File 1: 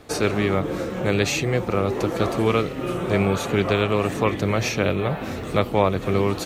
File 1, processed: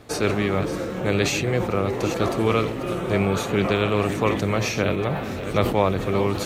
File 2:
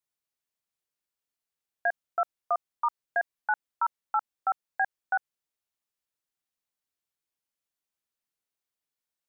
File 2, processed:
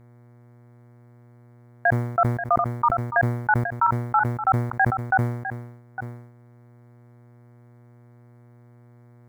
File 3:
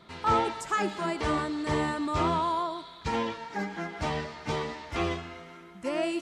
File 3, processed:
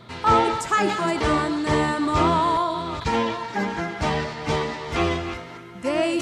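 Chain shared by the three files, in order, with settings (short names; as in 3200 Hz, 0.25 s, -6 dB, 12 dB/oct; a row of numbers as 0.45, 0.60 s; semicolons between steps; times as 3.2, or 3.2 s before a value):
reverse delay 0.429 s, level -11 dB; buzz 120 Hz, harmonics 19, -58 dBFS -8 dB/oct; sustainer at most 67 dB/s; match loudness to -23 LUFS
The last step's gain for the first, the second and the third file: -1.0, +7.0, +7.0 dB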